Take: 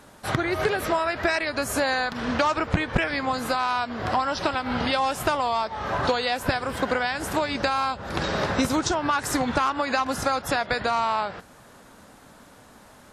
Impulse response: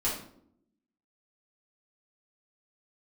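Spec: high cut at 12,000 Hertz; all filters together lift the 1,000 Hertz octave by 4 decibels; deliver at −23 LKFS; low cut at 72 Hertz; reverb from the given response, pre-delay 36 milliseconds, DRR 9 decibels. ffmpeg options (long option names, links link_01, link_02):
-filter_complex "[0:a]highpass=72,lowpass=12000,equalizer=frequency=1000:width_type=o:gain=5,asplit=2[link_01][link_02];[1:a]atrim=start_sample=2205,adelay=36[link_03];[link_02][link_03]afir=irnorm=-1:irlink=0,volume=-16.5dB[link_04];[link_01][link_04]amix=inputs=2:normalize=0,volume=-1dB"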